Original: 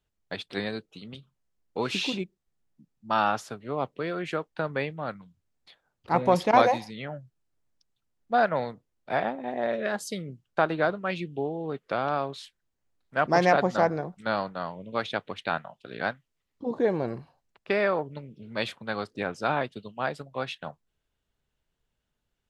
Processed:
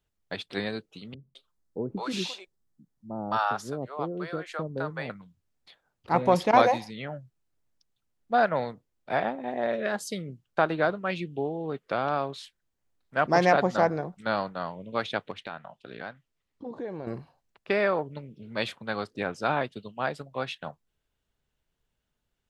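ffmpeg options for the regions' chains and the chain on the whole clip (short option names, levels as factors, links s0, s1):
-filter_complex "[0:a]asettb=1/sr,asplit=3[s0][s1][s2];[s0]atrim=end=1.144[s3];[s1]atrim=start=1.14:end=5.1,asetpts=PTS-STARTPTS,afade=t=in:d=0.004:c=qsin,afade=t=out:st=3.956:d=0.004:c=qsin,equalizer=f=2600:t=o:w=0.84:g=-8,acrossover=split=580[s4][s5];[s5]adelay=210[s6];[s4][s6]amix=inputs=2:normalize=0,atrim=end_sample=174636[s7];[s2]atrim=start=5.096[s8];[s3][s7]acrossfade=d=0.004:c1=hsin:c2=qsin[s9];[s9][s8]acrossfade=d=0.004:c1=qsin:c2=hsin,asettb=1/sr,asplit=3[s10][s11][s12];[s10]atrim=end=15.314[s13];[s11]atrim=start=15.31:end=17.07,asetpts=PTS-STARTPTS,afade=t=in:d=0.004:c=qsin,afade=t=out:st=1.756:d=0.004:c=qsin,highshelf=f=7700:g=-6,acompressor=threshold=0.0141:ratio=2.5:attack=3.2:release=140:knee=1:detection=peak[s14];[s12]atrim=start=17.066[s15];[s13][s14]acrossfade=d=0.004:c1=hsin:c2=qsin[s16];[s16][s15]acrossfade=d=0.004:c1=qsin:c2=hsin"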